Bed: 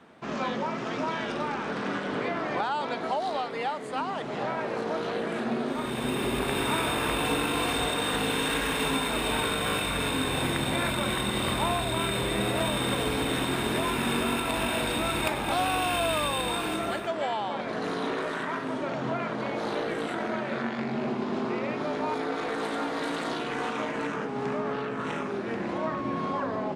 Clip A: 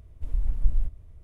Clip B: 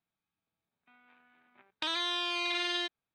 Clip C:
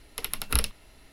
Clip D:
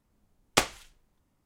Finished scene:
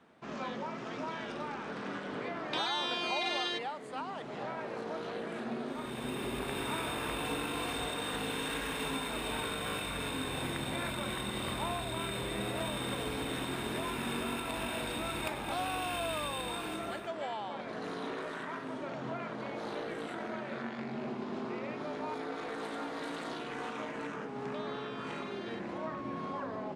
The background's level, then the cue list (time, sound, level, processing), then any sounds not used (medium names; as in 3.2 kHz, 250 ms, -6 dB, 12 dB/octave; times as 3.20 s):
bed -8.5 dB
0.71 s: add B -2.5 dB
22.72 s: add B -11.5 dB + treble shelf 2.1 kHz -11 dB
not used: A, C, D